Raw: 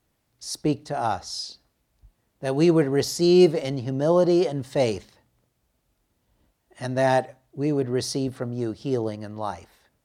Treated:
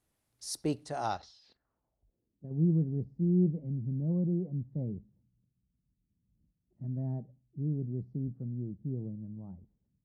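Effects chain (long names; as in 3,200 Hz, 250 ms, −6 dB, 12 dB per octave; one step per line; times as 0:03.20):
0:01.17–0:02.51: output level in coarse steps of 15 dB
low-pass filter sweep 11,000 Hz → 180 Hz, 0:00.79–0:02.53
level −8.5 dB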